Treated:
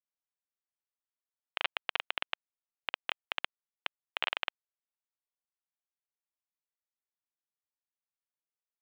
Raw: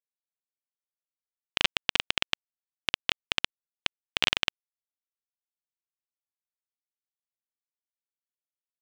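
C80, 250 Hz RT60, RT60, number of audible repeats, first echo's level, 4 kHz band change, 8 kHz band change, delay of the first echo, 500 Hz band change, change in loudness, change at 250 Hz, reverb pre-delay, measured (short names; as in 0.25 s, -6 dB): none, none, none, none, none, -10.0 dB, under -25 dB, none, -5.5 dB, -8.5 dB, -16.5 dB, none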